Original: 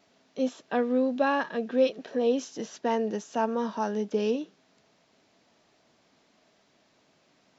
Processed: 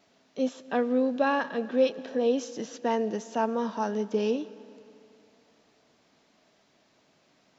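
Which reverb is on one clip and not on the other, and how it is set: algorithmic reverb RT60 2.8 s, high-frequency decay 0.85×, pre-delay 80 ms, DRR 18 dB

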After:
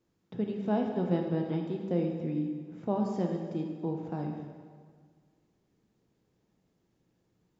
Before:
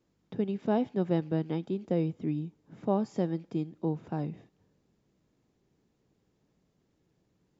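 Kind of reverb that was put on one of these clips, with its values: plate-style reverb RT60 1.8 s, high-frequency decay 0.8×, DRR 1.5 dB; trim -3 dB

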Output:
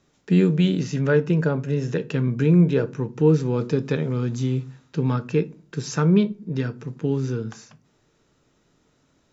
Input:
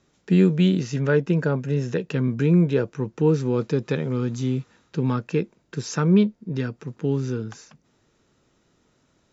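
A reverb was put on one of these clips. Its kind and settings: simulated room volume 190 m³, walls furnished, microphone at 0.39 m

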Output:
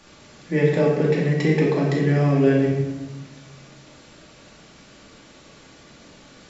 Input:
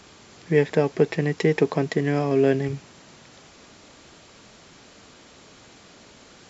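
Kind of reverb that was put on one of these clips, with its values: simulated room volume 650 m³, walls mixed, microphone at 2.4 m; trim -4.5 dB

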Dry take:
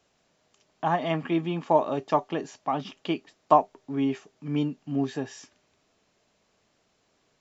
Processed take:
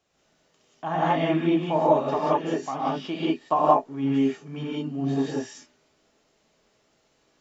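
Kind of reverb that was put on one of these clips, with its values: gated-style reverb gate 210 ms rising, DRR -7.5 dB; trim -5.5 dB

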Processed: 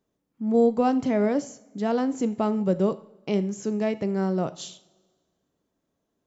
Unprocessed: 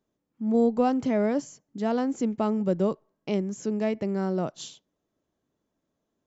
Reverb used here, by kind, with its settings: two-slope reverb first 0.49 s, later 1.7 s, from -17 dB, DRR 12 dB; trim +1.5 dB

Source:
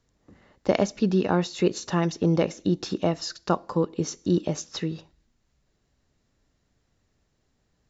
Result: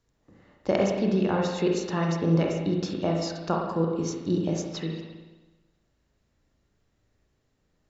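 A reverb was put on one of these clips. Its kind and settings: spring tank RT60 1.2 s, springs 36/55 ms, chirp 35 ms, DRR -0.5 dB; trim -4 dB

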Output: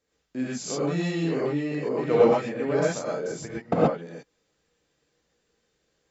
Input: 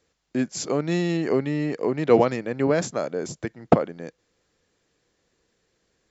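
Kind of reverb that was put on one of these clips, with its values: gated-style reverb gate 150 ms rising, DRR -7.5 dB; trim -10 dB

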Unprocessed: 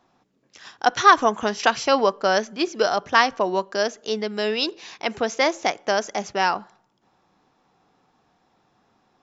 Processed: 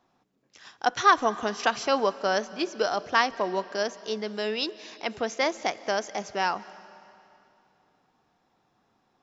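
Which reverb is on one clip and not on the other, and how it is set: algorithmic reverb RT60 2.7 s, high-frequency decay 0.95×, pre-delay 115 ms, DRR 17.5 dB; trim -5.5 dB

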